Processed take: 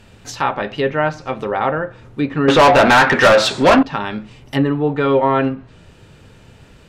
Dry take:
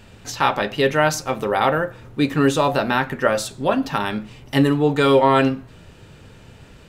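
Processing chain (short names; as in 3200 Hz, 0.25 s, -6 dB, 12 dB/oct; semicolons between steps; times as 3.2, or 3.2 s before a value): treble ducked by the level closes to 2200 Hz, closed at -15.5 dBFS; 2.48–3.83 overdrive pedal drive 28 dB, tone 5800 Hz, clips at -2 dBFS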